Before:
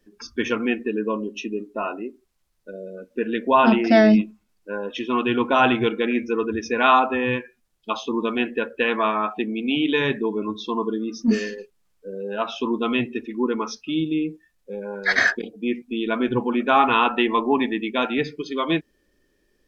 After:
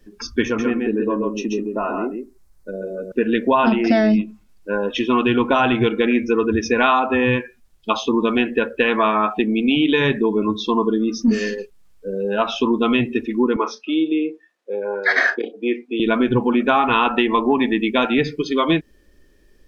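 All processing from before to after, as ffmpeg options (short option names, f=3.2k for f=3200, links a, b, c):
-filter_complex "[0:a]asettb=1/sr,asplit=3[a][b][c];[a]atrim=end=0.454[d];[b]atrim=start=0.45:end=3.12,asetpts=PTS-STARTPTS,afade=t=in:d=0.004:c=qsin,afade=t=out:st=2.666:d=0.004:c=qsin,equalizer=f=3k:t=o:w=1:g=-9.5,acompressor=threshold=-31dB:ratio=1.5:attack=3.2:release=140:knee=1:detection=peak,aecho=1:1:134:0.668,atrim=end_sample=117747[e];[c]atrim=start=3.116[f];[d][e]acrossfade=d=0.004:c1=hsin:c2=qsin[g];[g][f]acrossfade=d=0.004:c1=qsin:c2=hsin,asettb=1/sr,asplit=3[h][i][j];[h]atrim=end=13.564[k];[i]atrim=start=13.56:end=16,asetpts=PTS-STARTPTS,afade=t=in:d=0.004:c=qsin,afade=t=out:st=2.436:d=0.004:c=qsin,highpass=f=320:w=0.5412,highpass=f=320:w=1.3066,aemphasis=mode=reproduction:type=75fm,asplit=2[l][m];[m]adelay=34,volume=-13dB[n];[l][n]amix=inputs=2:normalize=0,atrim=end_sample=107604[o];[j]atrim=start=15.996[p];[k][o]acrossfade=d=0.004:c1=hsin:c2=qsin[q];[q][p]acrossfade=d=0.004:c1=qsin:c2=hsin,lowshelf=f=90:g=11,acompressor=threshold=-20dB:ratio=6,volume=7dB"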